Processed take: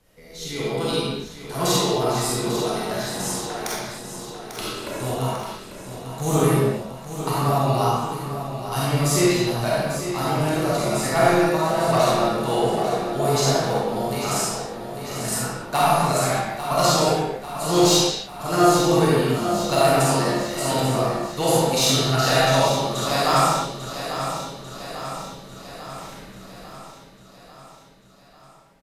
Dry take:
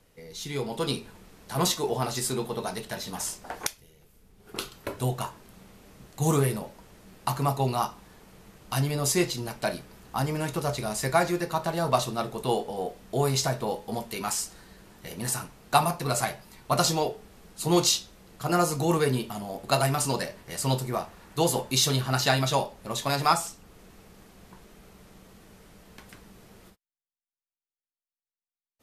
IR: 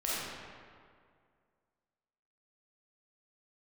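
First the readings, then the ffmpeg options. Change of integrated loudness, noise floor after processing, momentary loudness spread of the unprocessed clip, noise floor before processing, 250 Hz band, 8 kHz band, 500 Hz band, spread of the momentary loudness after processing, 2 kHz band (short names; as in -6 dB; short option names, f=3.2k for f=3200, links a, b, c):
+6.5 dB, -48 dBFS, 11 LU, under -85 dBFS, +7.5 dB, +4.5 dB, +8.5 dB, 16 LU, +6.5 dB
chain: -filter_complex "[0:a]volume=15dB,asoftclip=hard,volume=-15dB,aecho=1:1:845|1690|2535|3380|4225|5070|5915:0.316|0.183|0.106|0.0617|0.0358|0.0208|0.012[a];[1:a]atrim=start_sample=2205,afade=t=out:st=0.37:d=0.01,atrim=end_sample=16758[b];[a][b]afir=irnorm=-1:irlink=0"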